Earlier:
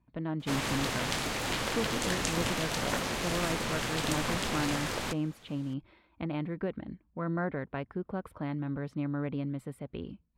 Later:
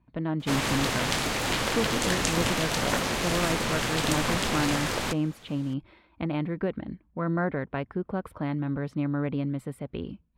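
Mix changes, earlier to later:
speech +5.0 dB; background +5.0 dB

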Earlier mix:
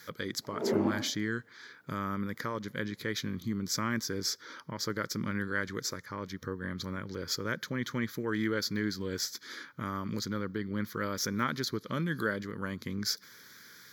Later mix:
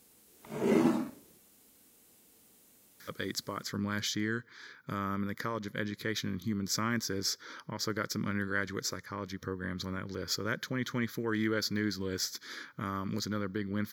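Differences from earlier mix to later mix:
speech: entry +3.00 s; background: remove band-pass 530 Hz, Q 0.88

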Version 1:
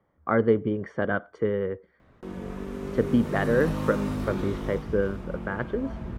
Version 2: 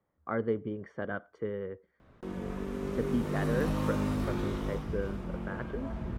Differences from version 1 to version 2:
speech -9.5 dB; reverb: off

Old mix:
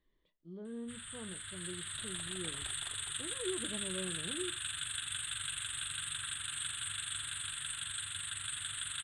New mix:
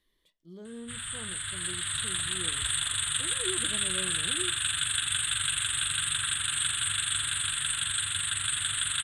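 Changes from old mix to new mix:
speech: remove tape spacing loss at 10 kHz 34 dB; first sound +10.5 dB

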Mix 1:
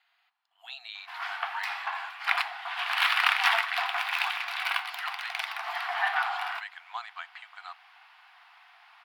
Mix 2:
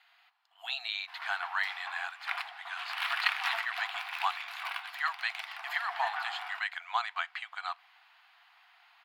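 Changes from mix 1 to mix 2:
speech +6.5 dB; background -9.0 dB

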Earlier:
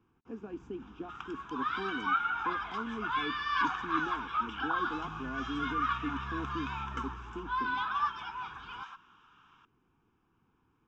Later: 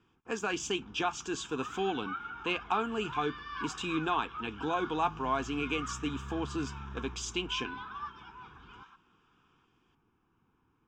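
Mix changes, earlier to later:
speech: remove band-pass 260 Hz, Q 2.5; second sound -10.0 dB

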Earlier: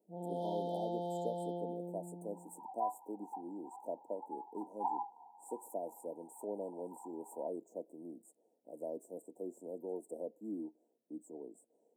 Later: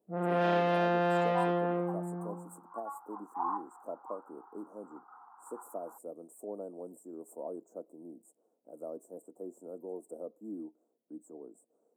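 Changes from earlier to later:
first sound +10.5 dB; second sound: entry -1.45 s; master: remove brick-wall FIR band-stop 1000–3100 Hz

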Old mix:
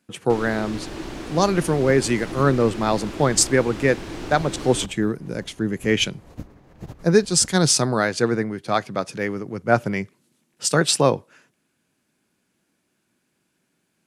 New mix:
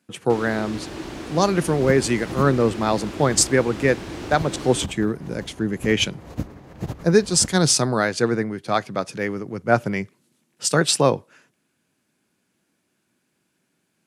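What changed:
second sound +8.0 dB; master: add HPF 50 Hz

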